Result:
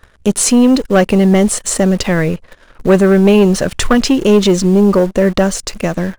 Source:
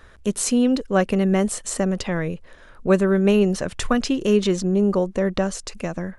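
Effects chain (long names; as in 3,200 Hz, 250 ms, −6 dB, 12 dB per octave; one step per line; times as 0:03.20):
leveller curve on the samples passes 2
in parallel at −9.5 dB: bit reduction 5 bits
on the sum: level +1 dB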